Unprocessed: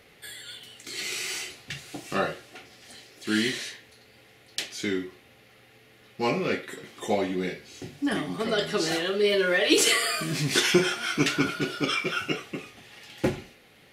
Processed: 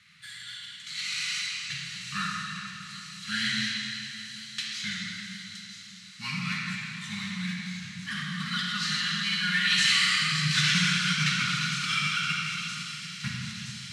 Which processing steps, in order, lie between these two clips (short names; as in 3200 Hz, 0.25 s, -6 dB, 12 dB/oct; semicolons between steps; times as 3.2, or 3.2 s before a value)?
CVSD 64 kbps; inverse Chebyshev band-stop 290–700 Hz, stop band 50 dB; small resonant body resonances 230/4000 Hz, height 10 dB, ringing for 20 ms; vibrato 12 Hz 14 cents; BPF 140–7200 Hz; thin delay 0.969 s, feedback 73%, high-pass 5000 Hz, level -8 dB; reverb RT60 3.0 s, pre-delay 38 ms, DRR -2 dB; gain -2 dB